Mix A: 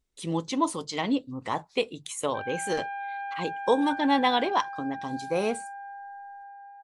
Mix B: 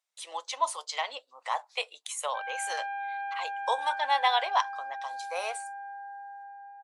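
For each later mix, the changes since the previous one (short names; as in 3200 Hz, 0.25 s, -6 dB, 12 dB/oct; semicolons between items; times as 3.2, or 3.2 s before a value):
master: add steep high-pass 620 Hz 36 dB/oct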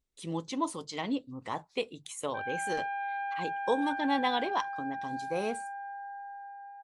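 speech -6.0 dB; master: remove steep high-pass 620 Hz 36 dB/oct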